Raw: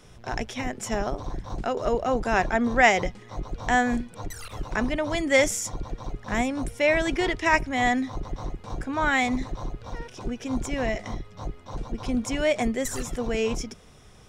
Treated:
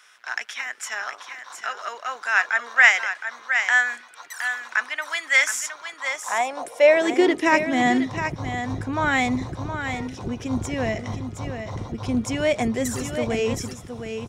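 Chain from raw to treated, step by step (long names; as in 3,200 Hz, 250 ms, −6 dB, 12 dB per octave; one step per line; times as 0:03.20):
single-tap delay 716 ms −8 dB
high-pass filter sweep 1,500 Hz → 91 Hz, 0:05.84–0:08.47
level +1.5 dB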